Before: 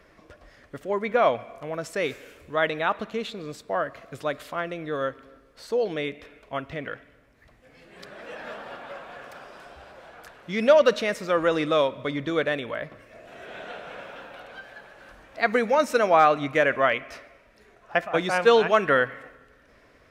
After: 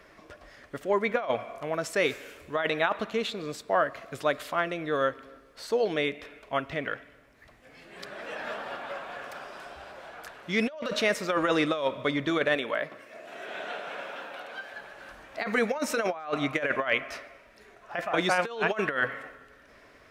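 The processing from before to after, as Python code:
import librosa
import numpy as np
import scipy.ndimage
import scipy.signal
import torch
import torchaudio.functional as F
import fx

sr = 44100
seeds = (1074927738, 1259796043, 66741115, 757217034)

y = fx.highpass(x, sr, hz=200.0, slope=12, at=(12.55, 14.74))
y = fx.low_shelf(y, sr, hz=240.0, db=-6.5)
y = fx.notch(y, sr, hz=500.0, q=16.0)
y = fx.over_compress(y, sr, threshold_db=-25.0, ratio=-0.5)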